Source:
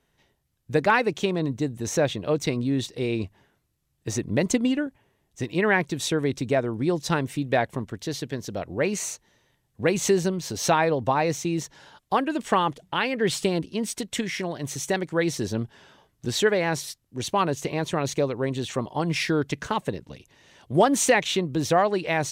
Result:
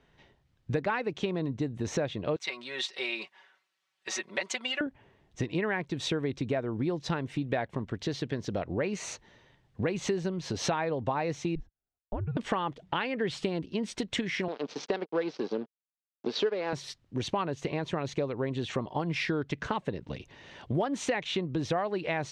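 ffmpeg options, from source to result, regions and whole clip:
ffmpeg -i in.wav -filter_complex "[0:a]asettb=1/sr,asplit=3[link_01][link_02][link_03];[link_01]atrim=end=2.364[link_04];[link_02]atrim=start=2.36:end=4.81,asetpts=PTS-STARTPTS,afade=type=in:duration=0.004:curve=qsin,afade=type=out:start_time=2.446:duration=0.004:curve=qsin,highpass=1100,aecho=1:1:5.3:0.89,atrim=end_sample=108045[link_05];[link_03]atrim=start=4.806[link_06];[link_04][link_05]acrossfade=duration=0.004:curve1=hsin:curve2=qsin[link_07];[link_07][link_06]acrossfade=duration=0.004:curve1=qsin:curve2=hsin,asettb=1/sr,asplit=3[link_08][link_09][link_10];[link_08]atrim=end=11.554[link_11];[link_09]atrim=start=11.55:end=12.37,asetpts=PTS-STARTPTS,afade=type=in:duration=0.004:curve=qsin,afade=type=out:start_time=0.816:duration=0.004:curve=qsin,agate=range=-37dB:threshold=-43dB:ratio=16:release=100:detection=peak,bandpass=frequency=120:width_type=q:width=1.1,afreqshift=-170[link_12];[link_10]atrim=start=12.366[link_13];[link_11][link_12]acrossfade=duration=0.004:curve1=hsin:curve2=qsin[link_14];[link_14][link_13]acrossfade=duration=0.004:curve1=qsin:curve2=hsin,asettb=1/sr,asplit=3[link_15][link_16][link_17];[link_15]atrim=end=14.484[link_18];[link_16]atrim=start=14.48:end=16.73,asetpts=PTS-STARTPTS,afade=type=in:duration=0.004:curve=qsin,afade=type=out:start_time=2.246:duration=0.004:curve=qsin,aeval=exprs='sgn(val(0))*max(abs(val(0))-0.0178,0)':channel_layout=same,highpass=frequency=210:width=0.5412,highpass=frequency=210:width=1.3066,equalizer=frequency=450:width_type=q:width=4:gain=8,equalizer=frequency=1900:width_type=q:width=4:gain=-5,equalizer=frequency=4800:width_type=q:width=4:gain=5,lowpass=frequency=5500:width=0.5412,lowpass=frequency=5500:width=1.3066[link_19];[link_17]atrim=start=16.726[link_20];[link_18][link_19]acrossfade=duration=0.004:curve1=hsin:curve2=qsin[link_21];[link_21][link_20]acrossfade=duration=0.004:curve1=qsin:curve2=hsin,lowpass=3800,acompressor=threshold=-35dB:ratio=4,volume=5.5dB" out.wav

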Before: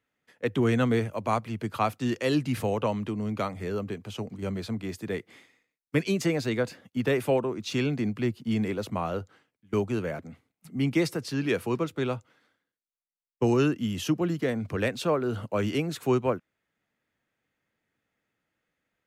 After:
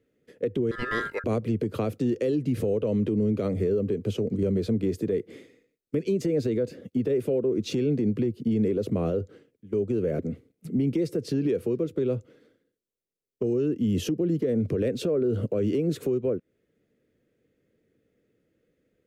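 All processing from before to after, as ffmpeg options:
ffmpeg -i in.wav -filter_complex "[0:a]asettb=1/sr,asplit=3[link_01][link_02][link_03];[link_01]atrim=end=0.714[link_04];[link_02]atrim=start=0.71:end=1.24,asetpts=PTS-STARTPTS,afade=type=in:duration=0.004:curve=qsin,afade=type=out:start_time=0.526:duration=0.004:curve=qsin,asubboost=boost=10:cutoff=200,aeval=exprs='val(0)*sin(2*PI*1500*n/s)':channel_layout=same[link_05];[link_03]atrim=start=1.236[link_06];[link_04][link_05]acrossfade=duration=0.004:curve1=hsin:curve2=qsin[link_07];[link_07][link_06]acrossfade=duration=0.004:curve1=qsin:curve2=hsin,lowshelf=frequency=630:width_type=q:width=3:gain=11,acompressor=threshold=-18dB:ratio=6,alimiter=limit=-17.5dB:level=0:latency=1:release=65" out.wav

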